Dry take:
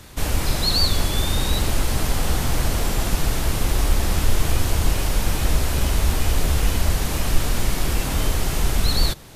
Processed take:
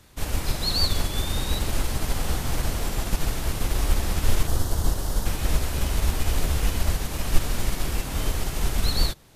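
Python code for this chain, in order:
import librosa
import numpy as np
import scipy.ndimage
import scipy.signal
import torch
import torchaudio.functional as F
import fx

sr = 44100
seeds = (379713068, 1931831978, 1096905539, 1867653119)

y = fx.peak_eq(x, sr, hz=2400.0, db=-12.5, octaves=0.63, at=(4.47, 5.26))
y = fx.upward_expand(y, sr, threshold_db=-30.0, expansion=1.5)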